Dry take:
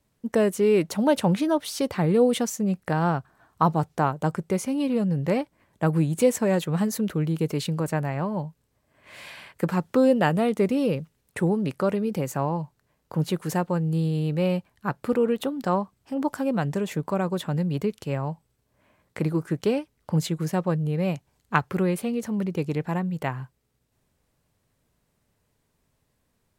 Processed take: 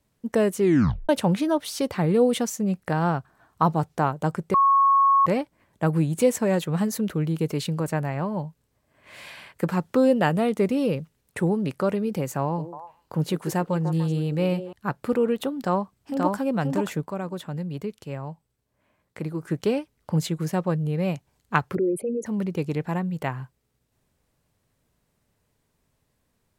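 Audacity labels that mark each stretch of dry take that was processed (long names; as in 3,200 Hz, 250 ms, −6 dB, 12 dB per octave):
0.610000	0.610000	tape stop 0.48 s
4.540000	5.260000	beep over 1,100 Hz −14.5 dBFS
12.430000	14.730000	echo through a band-pass that steps 147 ms, band-pass from 350 Hz, each repeat 1.4 octaves, level −5.5 dB
15.560000	16.370000	delay throw 530 ms, feedback 10%, level −2.5 dB
17.050000	19.430000	clip gain −5.5 dB
21.750000	22.260000	spectral envelope exaggerated exponent 3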